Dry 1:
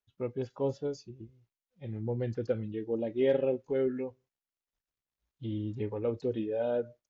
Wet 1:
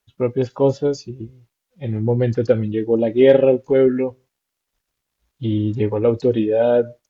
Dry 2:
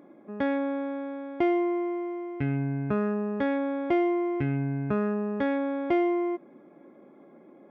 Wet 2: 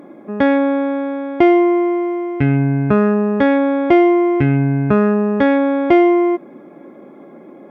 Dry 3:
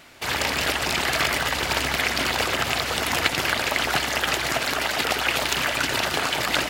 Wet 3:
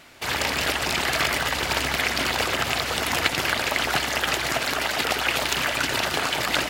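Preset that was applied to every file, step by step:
MP3 320 kbps 48 kHz; peak normalisation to -1.5 dBFS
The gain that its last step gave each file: +15.0 dB, +13.5 dB, -0.5 dB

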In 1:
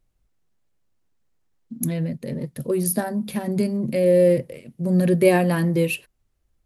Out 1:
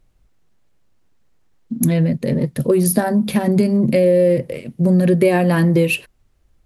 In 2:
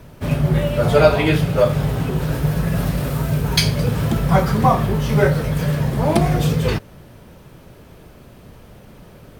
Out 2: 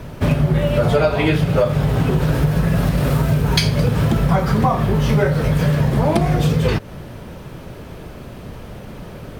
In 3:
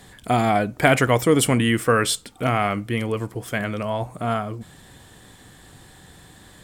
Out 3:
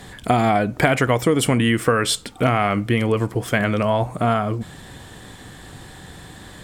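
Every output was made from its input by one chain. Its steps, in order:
treble shelf 6.9 kHz -6.5 dB; compression 6:1, threshold -22 dBFS; peak normalisation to -2 dBFS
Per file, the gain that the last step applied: +11.0 dB, +9.0 dB, +8.0 dB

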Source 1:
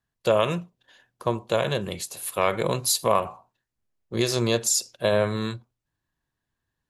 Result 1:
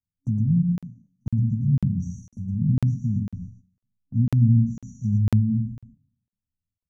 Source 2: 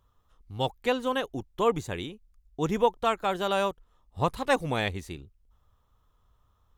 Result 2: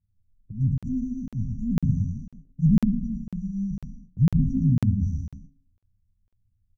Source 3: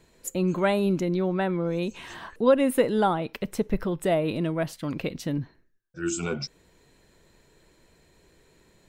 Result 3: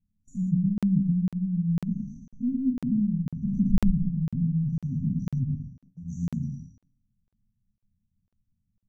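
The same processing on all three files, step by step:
spectral sustain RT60 0.91 s; FFT filter 160 Hz 0 dB, 560 Hz -13 dB, 5.6 kHz -2 dB, 8 kHz -23 dB; touch-sensitive flanger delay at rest 11.2 ms, full sweep at -26 dBFS; low-pass that closes with the level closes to 400 Hz, closed at -25.5 dBFS; FFT band-reject 270–5700 Hz; gate -54 dBFS, range -15 dB; level-controlled noise filter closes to 1.8 kHz, open at -27 dBFS; peaking EQ 9.9 kHz +8 dB 1.5 oct; de-hum 91.8 Hz, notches 9; on a send: delay 113 ms -4.5 dB; on the sum: crackling interface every 0.50 s, samples 2048, zero, from 0.78 s; peak normalisation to -9 dBFS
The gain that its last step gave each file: +10.5 dB, +13.5 dB, +5.0 dB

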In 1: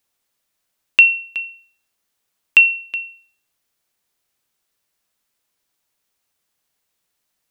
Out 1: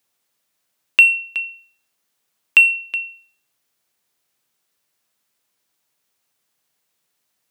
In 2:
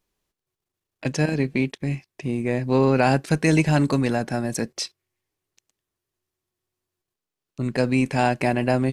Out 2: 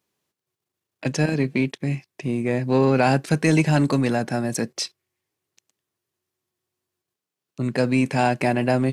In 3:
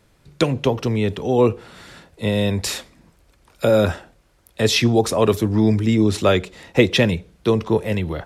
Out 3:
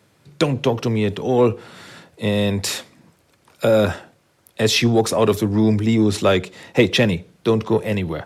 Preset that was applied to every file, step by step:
high-pass 96 Hz 24 dB/octave; in parallel at -7 dB: saturation -17.5 dBFS; on the sum: trim -1.5 dB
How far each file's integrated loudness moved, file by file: -1.5 LU, +0.5 LU, 0.0 LU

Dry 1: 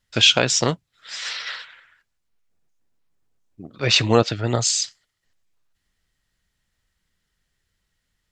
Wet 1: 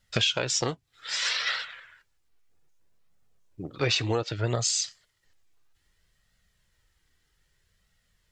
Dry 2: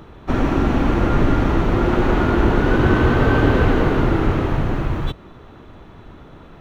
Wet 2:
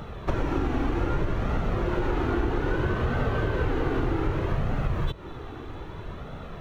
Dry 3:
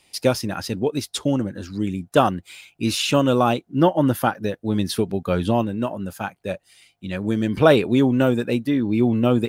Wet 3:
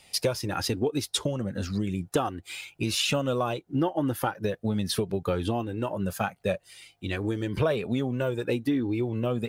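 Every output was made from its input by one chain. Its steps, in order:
compression 8:1, threshold -26 dBFS; flange 0.63 Hz, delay 1.4 ms, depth 1.3 ms, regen -41%; trim +7 dB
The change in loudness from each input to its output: -7.5 LU, -9.5 LU, -7.5 LU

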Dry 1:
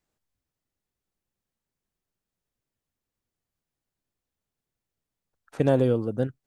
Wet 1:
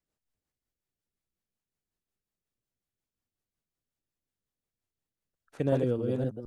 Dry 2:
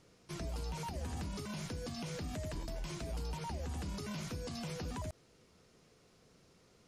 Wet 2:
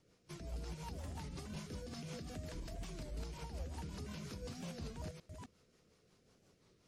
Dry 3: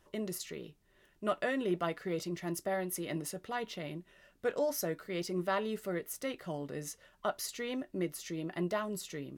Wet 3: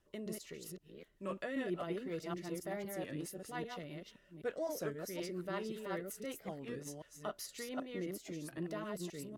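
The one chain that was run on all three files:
chunks repeated in reverse 260 ms, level -3 dB; rotary cabinet horn 5.5 Hz; warped record 33 1/3 rpm, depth 160 cents; trim -5 dB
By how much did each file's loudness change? -5.0 LU, -5.0 LU, -6.0 LU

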